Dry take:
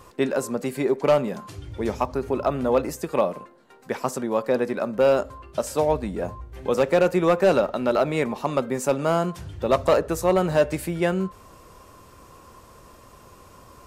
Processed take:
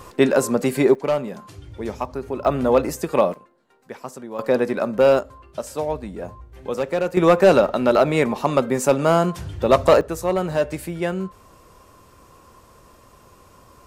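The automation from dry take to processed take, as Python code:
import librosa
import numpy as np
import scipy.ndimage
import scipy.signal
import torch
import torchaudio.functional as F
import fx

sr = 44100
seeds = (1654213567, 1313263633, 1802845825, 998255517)

y = fx.gain(x, sr, db=fx.steps((0.0, 7.0), (0.95, -2.5), (2.45, 4.0), (3.34, -8.0), (4.39, 3.5), (5.19, -3.5), (7.17, 5.0), (10.01, -1.5)))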